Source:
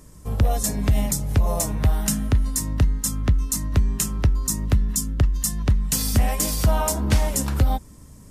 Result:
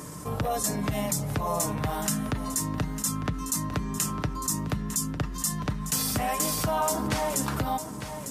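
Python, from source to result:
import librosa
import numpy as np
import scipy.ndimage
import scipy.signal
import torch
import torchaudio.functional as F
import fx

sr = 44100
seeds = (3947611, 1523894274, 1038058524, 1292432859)

y = scipy.signal.sosfilt(scipy.signal.butter(2, 130.0, 'highpass', fs=sr, output='sos'), x)
y = fx.peak_eq(y, sr, hz=1100.0, db=5.5, octaves=1.2)
y = y + 0.31 * np.pad(y, (int(6.7 * sr / 1000.0), 0))[:len(y)]
y = y + 10.0 ** (-19.0 / 20.0) * np.pad(y, (int(902 * sr / 1000.0), 0))[:len(y)]
y = fx.env_flatten(y, sr, amount_pct=50)
y = y * 10.0 ** (-6.0 / 20.0)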